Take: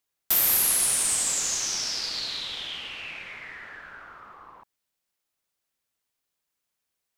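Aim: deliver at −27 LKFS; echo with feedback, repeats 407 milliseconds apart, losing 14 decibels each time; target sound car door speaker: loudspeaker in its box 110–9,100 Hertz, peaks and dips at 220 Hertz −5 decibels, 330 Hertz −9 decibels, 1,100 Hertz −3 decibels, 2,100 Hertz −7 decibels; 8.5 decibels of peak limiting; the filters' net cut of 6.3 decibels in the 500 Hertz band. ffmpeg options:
ffmpeg -i in.wav -af "equalizer=frequency=500:width_type=o:gain=-6.5,alimiter=limit=-17dB:level=0:latency=1,highpass=110,equalizer=frequency=220:width_type=q:width=4:gain=-5,equalizer=frequency=330:width_type=q:width=4:gain=-9,equalizer=frequency=1100:width_type=q:width=4:gain=-3,equalizer=frequency=2100:width_type=q:width=4:gain=-7,lowpass=frequency=9100:width=0.5412,lowpass=frequency=9100:width=1.3066,aecho=1:1:407|814:0.2|0.0399,volume=1.5dB" out.wav

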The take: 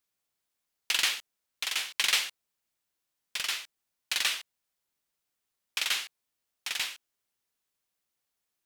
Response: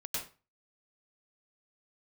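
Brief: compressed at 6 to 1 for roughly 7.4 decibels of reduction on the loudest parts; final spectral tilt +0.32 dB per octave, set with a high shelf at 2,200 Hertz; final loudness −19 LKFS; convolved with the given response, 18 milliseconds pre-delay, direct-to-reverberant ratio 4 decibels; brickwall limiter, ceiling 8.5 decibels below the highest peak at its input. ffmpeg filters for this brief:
-filter_complex "[0:a]highshelf=frequency=2200:gain=-7.5,acompressor=threshold=-35dB:ratio=6,alimiter=level_in=3dB:limit=-24dB:level=0:latency=1,volume=-3dB,asplit=2[link_01][link_02];[1:a]atrim=start_sample=2205,adelay=18[link_03];[link_02][link_03]afir=irnorm=-1:irlink=0,volume=-6dB[link_04];[link_01][link_04]amix=inputs=2:normalize=0,volume=22.5dB"

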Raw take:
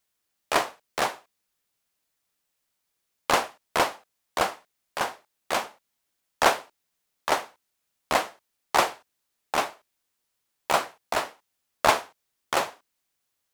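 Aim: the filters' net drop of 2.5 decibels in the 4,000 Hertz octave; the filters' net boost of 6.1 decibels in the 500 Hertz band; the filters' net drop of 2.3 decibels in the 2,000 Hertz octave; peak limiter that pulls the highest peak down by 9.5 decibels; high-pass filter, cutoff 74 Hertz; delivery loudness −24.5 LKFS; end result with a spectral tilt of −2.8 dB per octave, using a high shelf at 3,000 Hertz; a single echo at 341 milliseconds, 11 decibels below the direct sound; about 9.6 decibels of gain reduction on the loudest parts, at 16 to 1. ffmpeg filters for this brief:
ffmpeg -i in.wav -af "highpass=74,equalizer=frequency=500:width_type=o:gain=8,equalizer=frequency=2000:width_type=o:gain=-4,highshelf=frequency=3000:gain=5,equalizer=frequency=4000:width_type=o:gain=-6,acompressor=threshold=-22dB:ratio=16,alimiter=limit=-15dB:level=0:latency=1,aecho=1:1:341:0.282,volume=10.5dB" out.wav

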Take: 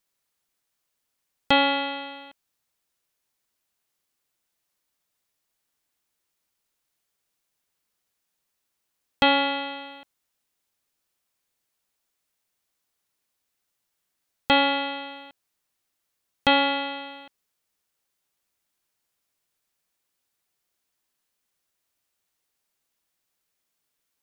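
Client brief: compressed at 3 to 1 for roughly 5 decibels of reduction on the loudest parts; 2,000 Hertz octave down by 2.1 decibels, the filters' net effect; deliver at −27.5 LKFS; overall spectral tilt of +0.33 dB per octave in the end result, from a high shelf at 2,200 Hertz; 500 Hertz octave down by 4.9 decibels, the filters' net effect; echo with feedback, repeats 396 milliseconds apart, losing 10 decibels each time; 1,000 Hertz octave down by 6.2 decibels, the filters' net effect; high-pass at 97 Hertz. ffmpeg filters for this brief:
ffmpeg -i in.wav -af "highpass=97,equalizer=frequency=500:width_type=o:gain=-3.5,equalizer=frequency=1000:width_type=o:gain=-7,equalizer=frequency=2000:width_type=o:gain=-4,highshelf=frequency=2200:gain=4.5,acompressor=threshold=-23dB:ratio=3,aecho=1:1:396|792|1188|1584:0.316|0.101|0.0324|0.0104,volume=1.5dB" out.wav

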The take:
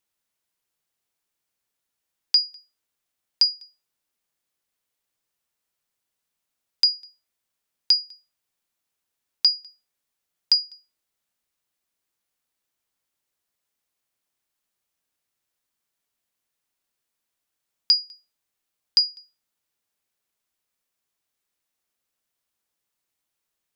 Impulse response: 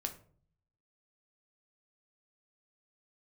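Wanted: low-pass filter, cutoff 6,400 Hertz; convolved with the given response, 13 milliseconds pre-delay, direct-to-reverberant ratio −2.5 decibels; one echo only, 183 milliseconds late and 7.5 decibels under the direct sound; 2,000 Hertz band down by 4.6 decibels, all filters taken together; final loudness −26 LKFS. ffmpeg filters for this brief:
-filter_complex "[0:a]lowpass=6400,equalizer=frequency=2000:width_type=o:gain=-6,aecho=1:1:183:0.422,asplit=2[link_01][link_02];[1:a]atrim=start_sample=2205,adelay=13[link_03];[link_02][link_03]afir=irnorm=-1:irlink=0,volume=3dB[link_04];[link_01][link_04]amix=inputs=2:normalize=0,volume=-3dB"

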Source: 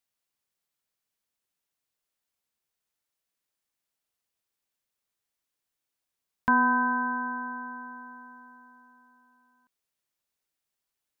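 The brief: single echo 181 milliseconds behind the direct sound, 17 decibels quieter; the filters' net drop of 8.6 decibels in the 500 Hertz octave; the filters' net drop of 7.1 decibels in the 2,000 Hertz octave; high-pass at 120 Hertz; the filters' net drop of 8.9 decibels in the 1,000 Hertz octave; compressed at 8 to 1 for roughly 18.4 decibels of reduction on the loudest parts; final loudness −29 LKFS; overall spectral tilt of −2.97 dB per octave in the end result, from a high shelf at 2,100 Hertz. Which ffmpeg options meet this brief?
ffmpeg -i in.wav -af "highpass=120,equalizer=frequency=500:width_type=o:gain=-7.5,equalizer=frequency=1000:width_type=o:gain=-6.5,equalizer=frequency=2000:width_type=o:gain=-8,highshelf=frequency=2100:gain=3,acompressor=threshold=-44dB:ratio=8,aecho=1:1:181:0.141,volume=21dB" out.wav

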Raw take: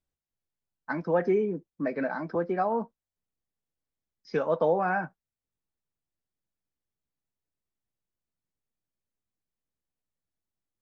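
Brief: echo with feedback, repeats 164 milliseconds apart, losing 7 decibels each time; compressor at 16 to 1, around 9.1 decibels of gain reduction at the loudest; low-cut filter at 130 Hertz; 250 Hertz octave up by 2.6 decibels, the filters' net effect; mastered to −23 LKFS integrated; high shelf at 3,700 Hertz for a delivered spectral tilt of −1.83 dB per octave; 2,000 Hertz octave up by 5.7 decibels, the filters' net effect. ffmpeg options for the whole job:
ffmpeg -i in.wav -af "highpass=130,equalizer=frequency=250:width_type=o:gain=4,equalizer=frequency=2000:width_type=o:gain=7.5,highshelf=frequency=3700:gain=4,acompressor=threshold=-27dB:ratio=16,aecho=1:1:164|328|492|656|820:0.447|0.201|0.0905|0.0407|0.0183,volume=9.5dB" out.wav

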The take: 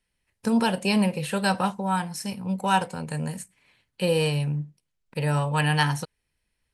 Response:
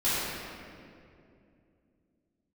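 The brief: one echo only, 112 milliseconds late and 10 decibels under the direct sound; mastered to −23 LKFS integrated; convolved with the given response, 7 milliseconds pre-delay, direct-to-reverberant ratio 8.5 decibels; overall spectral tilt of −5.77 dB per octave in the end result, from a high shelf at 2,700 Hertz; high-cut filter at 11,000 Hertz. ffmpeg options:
-filter_complex "[0:a]lowpass=11000,highshelf=frequency=2700:gain=-8,aecho=1:1:112:0.316,asplit=2[link_01][link_02];[1:a]atrim=start_sample=2205,adelay=7[link_03];[link_02][link_03]afir=irnorm=-1:irlink=0,volume=-21dB[link_04];[link_01][link_04]amix=inputs=2:normalize=0,volume=2.5dB"

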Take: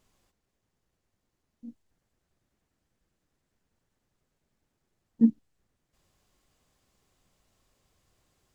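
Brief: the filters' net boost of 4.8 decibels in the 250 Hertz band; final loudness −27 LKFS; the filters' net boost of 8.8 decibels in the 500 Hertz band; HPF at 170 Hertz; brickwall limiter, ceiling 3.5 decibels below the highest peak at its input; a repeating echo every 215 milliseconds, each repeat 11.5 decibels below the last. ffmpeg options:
ffmpeg -i in.wav -af "highpass=170,equalizer=frequency=250:width_type=o:gain=5,equalizer=frequency=500:width_type=o:gain=8.5,alimiter=limit=-8.5dB:level=0:latency=1,aecho=1:1:215|430|645:0.266|0.0718|0.0194,volume=-2.5dB" out.wav

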